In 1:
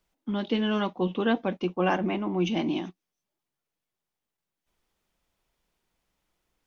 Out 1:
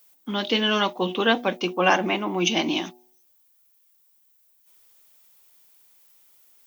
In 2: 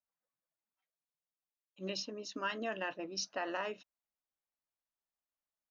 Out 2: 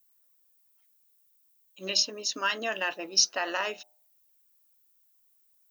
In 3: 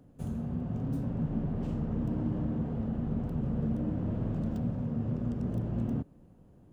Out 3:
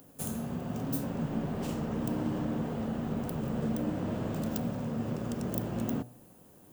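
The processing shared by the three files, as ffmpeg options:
ffmpeg -i in.wav -af "aemphasis=mode=production:type=riaa,bandreject=frequency=121.6:width_type=h:width=4,bandreject=frequency=243.2:width_type=h:width=4,bandreject=frequency=364.8:width_type=h:width=4,bandreject=frequency=486.4:width_type=h:width=4,bandreject=frequency=608:width_type=h:width=4,bandreject=frequency=729.6:width_type=h:width=4,bandreject=frequency=851.2:width_type=h:width=4,volume=7.5dB" out.wav

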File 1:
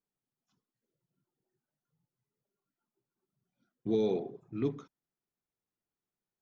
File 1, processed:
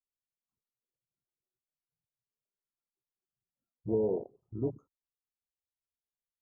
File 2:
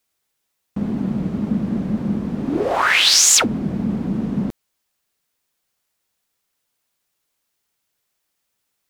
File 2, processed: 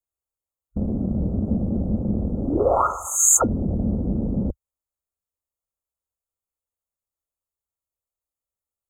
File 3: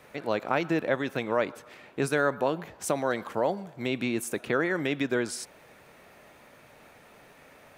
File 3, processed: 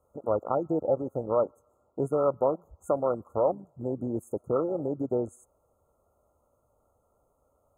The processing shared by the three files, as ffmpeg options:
ffmpeg -i in.wav -af "lowshelf=frequency=110:width_type=q:width=1.5:gain=11.5,afwtdn=0.0501,equalizer=frequency=540:width_type=o:width=0.5:gain=5.5,afftfilt=real='re*(1-between(b*sr/4096,1400,6300))':imag='im*(1-between(b*sr/4096,1400,6300))':win_size=4096:overlap=0.75,volume=-1dB" out.wav

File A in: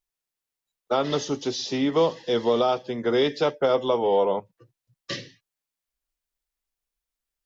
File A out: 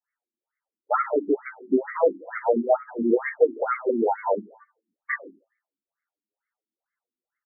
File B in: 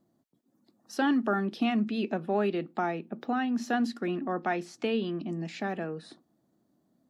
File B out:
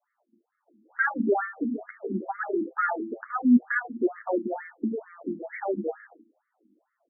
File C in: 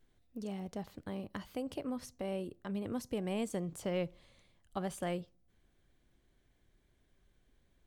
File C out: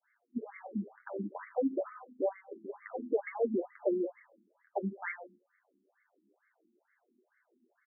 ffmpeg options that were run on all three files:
ffmpeg -i in.wav -filter_complex "[0:a]bandreject=frequency=1100:width=10,bandreject=frequency=111.2:width_type=h:width=4,bandreject=frequency=222.4:width_type=h:width=4,bandreject=frequency=333.6:width_type=h:width=4,bandreject=frequency=444.8:width_type=h:width=4,bandreject=frequency=556:width_type=h:width=4,bandreject=frequency=667.2:width_type=h:width=4,bandreject=frequency=778.4:width_type=h:width=4,bandreject=frequency=889.6:width_type=h:width=4,bandreject=frequency=1000.8:width_type=h:width=4,bandreject=frequency=1112:width_type=h:width=4,bandreject=frequency=1223.2:width_type=h:width=4,bandreject=frequency=1334.4:width_type=h:width=4,bandreject=frequency=1445.6:width_type=h:width=4,bandreject=frequency=1556.8:width_type=h:width=4,bandreject=frequency=1668:width_type=h:width=4,bandreject=frequency=1779.2:width_type=h:width=4,bandreject=frequency=1890.4:width_type=h:width=4,bandreject=frequency=2001.6:width_type=h:width=4,bandreject=frequency=2112.8:width_type=h:width=4,bandreject=frequency=2224:width_type=h:width=4,bandreject=frequency=2335.2:width_type=h:width=4,bandreject=frequency=2446.4:width_type=h:width=4,bandreject=frequency=2557.6:width_type=h:width=4,bandreject=frequency=2668.8:width_type=h:width=4,bandreject=frequency=2780:width_type=h:width=4,bandreject=frequency=2891.2:width_type=h:width=4,bandreject=frequency=3002.4:width_type=h:width=4,bandreject=frequency=3113.6:width_type=h:width=4,bandreject=frequency=3224.8:width_type=h:width=4,bandreject=frequency=3336:width_type=h:width=4,adynamicequalizer=threshold=0.0126:dfrequency=980:dqfactor=1.2:tfrequency=980:tqfactor=1.2:attack=5:release=100:ratio=0.375:range=2:mode=cutabove:tftype=bell,asplit=2[link_01][link_02];[link_02]alimiter=limit=-20.5dB:level=0:latency=1:release=149,volume=2.5dB[link_03];[link_01][link_03]amix=inputs=2:normalize=0,acontrast=39,flanger=delay=8:depth=2.8:regen=6:speed=0.27:shape=triangular,lowpass=frequency=2600:width_type=q:width=2.2,asplit=2[link_04][link_05];[link_05]aecho=0:1:76|152|228:0.158|0.0444|0.0124[link_06];[link_04][link_06]amix=inputs=2:normalize=0,afftfilt=real='re*between(b*sr/1024,250*pow(1600/250,0.5+0.5*sin(2*PI*2.2*pts/sr))/1.41,250*pow(1600/250,0.5+0.5*sin(2*PI*2.2*pts/sr))*1.41)':imag='im*between(b*sr/1024,250*pow(1600/250,0.5+0.5*sin(2*PI*2.2*pts/sr))/1.41,250*pow(1600/250,0.5+0.5*sin(2*PI*2.2*pts/sr))*1.41)':win_size=1024:overlap=0.75" out.wav

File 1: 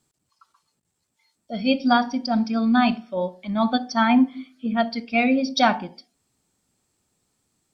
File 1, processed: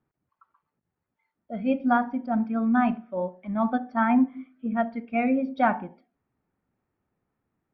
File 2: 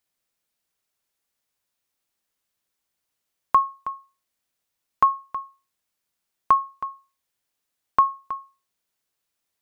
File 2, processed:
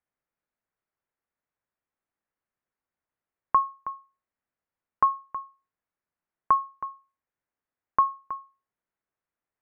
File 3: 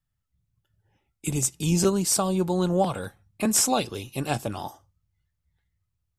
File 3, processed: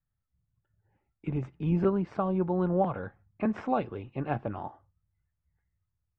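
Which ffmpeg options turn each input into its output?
ffmpeg -i in.wav -af "lowpass=frequency=2000:width=0.5412,lowpass=frequency=2000:width=1.3066,volume=-3.5dB" out.wav

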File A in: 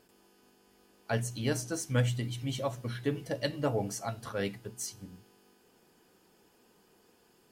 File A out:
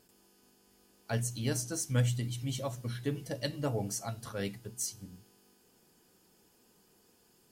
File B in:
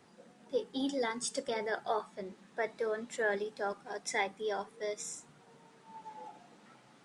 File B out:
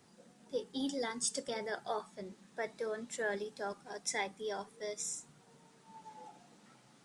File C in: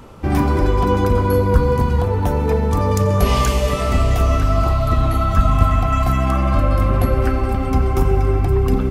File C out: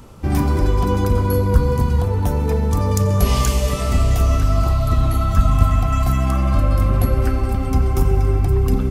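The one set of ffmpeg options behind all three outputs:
ffmpeg -i in.wav -af "bass=frequency=250:gain=5,treble=frequency=4000:gain=8,volume=-4.5dB" out.wav

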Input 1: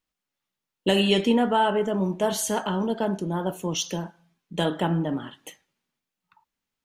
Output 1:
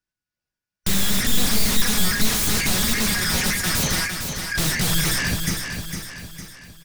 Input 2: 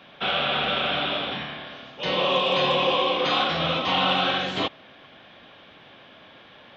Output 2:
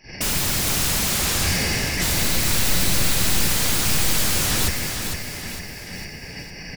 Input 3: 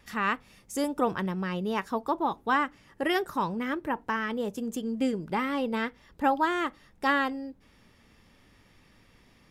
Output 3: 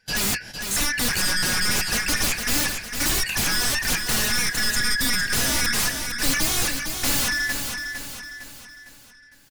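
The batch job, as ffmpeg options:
ffmpeg -i in.wav -filter_complex "[0:a]afftfilt=real='real(if(lt(b,272),68*(eq(floor(b/68),0)*2+eq(floor(b/68),1)*0+eq(floor(b/68),2)*3+eq(floor(b/68),3)*1)+mod(b,68),b),0)':imag='imag(if(lt(b,272),68*(eq(floor(b/68),0)*2+eq(floor(b/68),1)*0+eq(floor(b/68),2)*3+eq(floor(b/68),3)*1)+mod(b,68),b),0)':win_size=2048:overlap=0.75,flanger=delay=6.3:depth=5.7:regen=-59:speed=0.45:shape=sinusoidal,highshelf=frequency=8700:gain=-5,agate=range=-22dB:threshold=-52dB:ratio=16:detection=peak,aeval=exprs='(tanh(22.4*val(0)+0.25)-tanh(0.25))/22.4':channel_layout=same,aeval=exprs='0.0562*sin(PI/2*5.62*val(0)/0.0562)':channel_layout=same,bass=frequency=250:gain=13,treble=frequency=4000:gain=3,asplit=2[link_01][link_02];[link_02]aecho=0:1:456|912|1368|1824|2280:0.473|0.218|0.1|0.0461|0.0212[link_03];[link_01][link_03]amix=inputs=2:normalize=0,volume=2.5dB" out.wav

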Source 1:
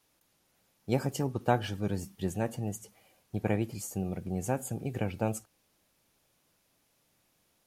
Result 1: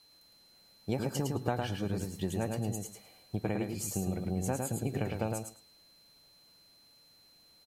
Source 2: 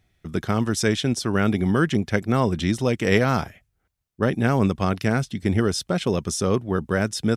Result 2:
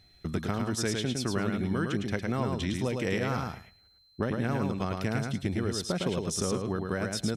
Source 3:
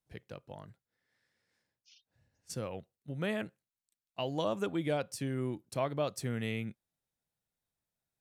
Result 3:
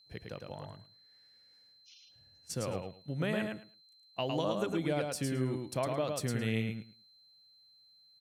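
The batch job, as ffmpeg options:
ffmpeg -i in.wav -af "acompressor=threshold=-32dB:ratio=4,aeval=exprs='val(0)+0.000708*sin(2*PI*4100*n/s)':channel_layout=same,aecho=1:1:108|216|324:0.631|0.101|0.0162,volume=2.5dB" out.wav

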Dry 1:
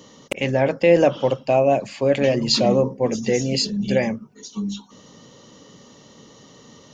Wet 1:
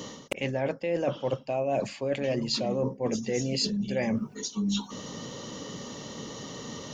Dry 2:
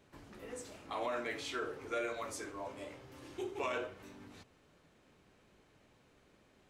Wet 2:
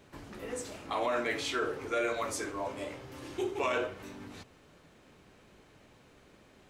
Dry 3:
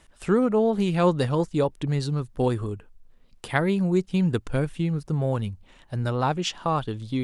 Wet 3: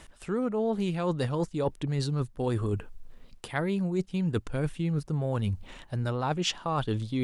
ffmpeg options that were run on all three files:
ffmpeg -i in.wav -af "areverse,acompressor=threshold=-33dB:ratio=12,areverse,volume=7.5dB" out.wav

